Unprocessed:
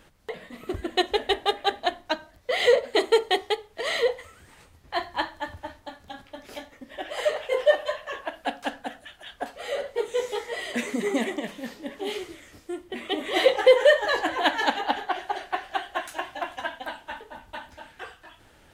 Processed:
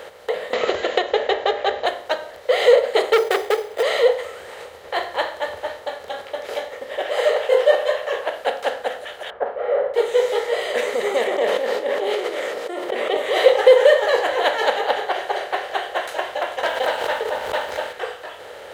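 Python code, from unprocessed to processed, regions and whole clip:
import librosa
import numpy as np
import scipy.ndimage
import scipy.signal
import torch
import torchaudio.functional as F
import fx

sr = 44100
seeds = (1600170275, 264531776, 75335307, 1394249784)

y = fx.chain(x, sr, fx.brickwall_lowpass(high_hz=7500.0),
    fx.high_shelf(hz=4900.0, db=-8.0),
    fx.band_squash(depth_pct=100), at=(0.53, 1.86))
y = fx.chain(y, sr, fx.peak_eq(hz=380.0, db=8.5, octaves=0.67),
    fx.sample_hold(seeds[0], rate_hz=5500.0, jitter_pct=0),
    fx.transformer_sat(knee_hz=1800.0), at=(3.13, 3.83))
y = fx.chain(y, sr, fx.lowpass(hz=1400.0, slope=24),
    fx.doubler(ms=48.0, db=-12.0), at=(9.3, 9.94))
y = fx.chain(y, sr, fx.highpass(hz=240.0, slope=24),
    fx.tilt_eq(slope=-2.5),
    fx.sustainer(db_per_s=30.0), at=(11.27, 13.17))
y = fx.chain(y, sr, fx.leveller(passes=2),
    fx.pre_swell(db_per_s=77.0), at=(16.63, 17.93))
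y = fx.bin_compress(y, sr, power=0.6)
y = scipy.signal.sosfilt(scipy.signal.butter(2, 67.0, 'highpass', fs=sr, output='sos'), y)
y = fx.low_shelf_res(y, sr, hz=360.0, db=-8.0, q=3.0)
y = y * librosa.db_to_amplitude(-2.0)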